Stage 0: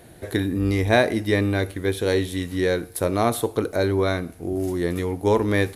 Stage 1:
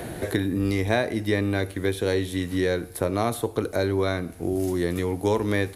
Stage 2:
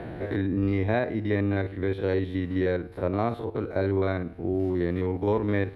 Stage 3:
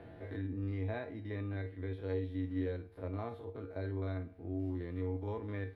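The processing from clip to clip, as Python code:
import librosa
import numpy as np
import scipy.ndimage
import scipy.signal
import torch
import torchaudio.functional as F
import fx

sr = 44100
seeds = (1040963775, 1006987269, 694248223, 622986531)

y1 = fx.band_squash(x, sr, depth_pct=70)
y1 = F.gain(torch.from_numpy(y1), -3.0).numpy()
y2 = fx.spec_steps(y1, sr, hold_ms=50)
y2 = fx.air_absorb(y2, sr, metres=390.0)
y3 = fx.comb_fb(y2, sr, f0_hz=93.0, decay_s=0.24, harmonics='odd', damping=0.0, mix_pct=80)
y3 = F.gain(torch.from_numpy(y3), -6.0).numpy()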